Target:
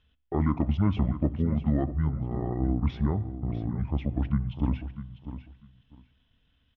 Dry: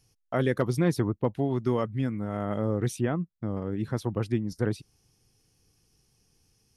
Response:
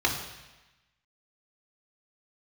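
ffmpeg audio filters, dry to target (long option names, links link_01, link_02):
-filter_complex "[0:a]asetrate=26222,aresample=44100,atempo=1.68179,lowpass=frequency=3000:width=0.5412,lowpass=frequency=3000:width=1.3066,aecho=1:1:649|1298:0.251|0.0452,asplit=2[link_01][link_02];[1:a]atrim=start_sample=2205[link_03];[link_02][link_03]afir=irnorm=-1:irlink=0,volume=-25dB[link_04];[link_01][link_04]amix=inputs=2:normalize=0"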